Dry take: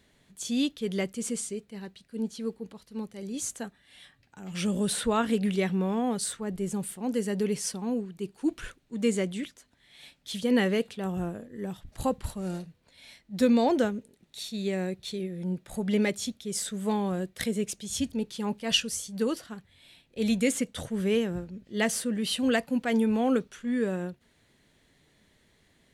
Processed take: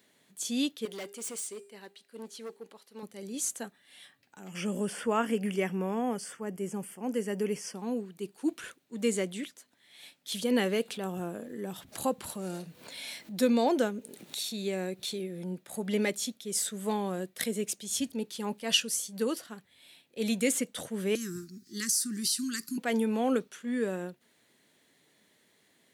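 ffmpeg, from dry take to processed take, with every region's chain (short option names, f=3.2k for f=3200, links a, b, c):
-filter_complex "[0:a]asettb=1/sr,asplit=3[a][b][c];[a]atrim=end=0.854[d];[b]atrim=start=0.85:end=3.03,asetpts=PTS-STARTPTS,afade=t=in:d=0.004:c=qsin,afade=t=out:st=2.176:d=0.004:c=qsin,bass=f=250:g=-15,treble=f=4k:g=-3,bandreject=f=402:t=h:w=4,bandreject=f=804:t=h:w=4,bandreject=f=1.206k:t=h:w=4,bandreject=f=1.608k:t=h:w=4,bandreject=f=2.01k:t=h:w=4,bandreject=f=2.412k:t=h:w=4,bandreject=f=2.814k:t=h:w=4,bandreject=f=3.216k:t=h:w=4,bandreject=f=3.618k:t=h:w=4,bandreject=f=4.02k:t=h:w=4,bandreject=f=4.422k:t=h:w=4,bandreject=f=4.824k:t=h:w=4,bandreject=f=5.226k:t=h:w=4,bandreject=f=5.628k:t=h:w=4,bandreject=f=6.03k:t=h:w=4,bandreject=f=6.432k:t=h:w=4,bandreject=f=6.834k:t=h:w=4,bandreject=f=7.236k:t=h:w=4,bandreject=f=7.638k:t=h:w=4,bandreject=f=8.04k:t=h:w=4,bandreject=f=8.442k:t=h:w=4,bandreject=f=8.844k:t=h:w=4,bandreject=f=9.246k:t=h:w=4,bandreject=f=9.648k:t=h:w=4,bandreject=f=10.05k:t=h:w=4,bandreject=f=10.452k:t=h:w=4,bandreject=f=10.854k:t=h:w=4,bandreject=f=11.256k:t=h:w=4,bandreject=f=11.658k:t=h:w=4,bandreject=f=12.06k:t=h:w=4,bandreject=f=12.462k:t=h:w=4,bandreject=f=12.864k:t=h:w=4,bandreject=f=13.266k:t=h:w=4,bandreject=f=13.668k:t=h:w=4,bandreject=f=14.07k:t=h:w=4,bandreject=f=14.472k:t=h:w=4,bandreject=f=14.874k:t=h:w=4,asoftclip=type=hard:threshold=-35dB[e];[c]atrim=start=3.026[f];[d][e]acrossfade=d=0.004:c1=hsin:c2=qsin[g];[g][f]acrossfade=d=0.004:c1=qsin:c2=hsin,asettb=1/sr,asplit=3[h][i][j];[h]atrim=end=4.484[k];[i]atrim=start=4.48:end=7.77,asetpts=PTS-STARTPTS,afade=t=in:d=0.004:c=qsin,afade=t=out:st=3.286:d=0.004:c=qsin,asuperstop=centerf=3900:order=4:qfactor=2.5,acrossover=split=4900[l][m];[m]acompressor=threshold=-49dB:ratio=4:attack=1:release=60[n];[l][n]amix=inputs=2:normalize=0[o];[j]atrim=start=7.766[p];[k][o]acrossfade=d=0.004:c1=hsin:c2=qsin[q];[q][p]acrossfade=d=0.004:c1=qsin:c2=hsin,asettb=1/sr,asplit=3[r][s][t];[r]atrim=end=10.324[u];[s]atrim=start=10.32:end=15.48,asetpts=PTS-STARTPTS,afade=t=in:d=0.004:c=qsin,afade=t=out:st=5.156:d=0.004:c=qsin,acompressor=mode=upward:threshold=-28dB:ratio=2.5:attack=3.2:release=140:knee=2.83:detection=peak,bandreject=f=1.9k:w=20[v];[t]atrim=start=15.476[w];[u][v]acrossfade=d=0.004:c1=hsin:c2=qsin[x];[x][w]acrossfade=d=0.004:c1=qsin:c2=hsin,asettb=1/sr,asplit=3[y][z][aa];[y]atrim=end=21.154[ab];[z]atrim=start=21.15:end=22.78,asetpts=PTS-STARTPTS,afade=t=in:d=0.004:c=qsin,afade=t=out:st=1.626:d=0.004:c=qsin,highshelf=f=3.9k:t=q:w=3:g=9.5,acompressor=threshold=-26dB:ratio=6:attack=3.2:release=140:knee=1:detection=peak,asuperstop=centerf=660:order=12:qfactor=0.88[ac];[aa]atrim=start=22.776[ad];[ab][ac]acrossfade=d=0.004:c1=hsin:c2=qsin[ae];[ae][ad]acrossfade=d=0.004:c1=qsin:c2=hsin,highpass=220,highshelf=f=11k:g=12,volume=-1.5dB"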